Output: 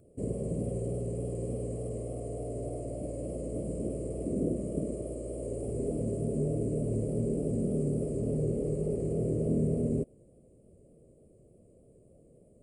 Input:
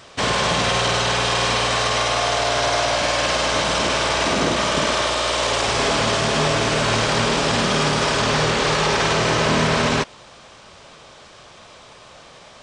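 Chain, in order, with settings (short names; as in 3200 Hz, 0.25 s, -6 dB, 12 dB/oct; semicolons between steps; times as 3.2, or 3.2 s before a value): inverse Chebyshev band-stop 870–6200 Hz, stop band 40 dB; vibrato 3.4 Hz 38 cents; gain -6.5 dB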